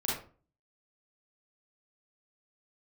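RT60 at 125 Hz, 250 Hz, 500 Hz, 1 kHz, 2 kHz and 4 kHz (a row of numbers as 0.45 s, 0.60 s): 0.55 s, 0.50 s, 0.40 s, 0.40 s, 0.30 s, 0.25 s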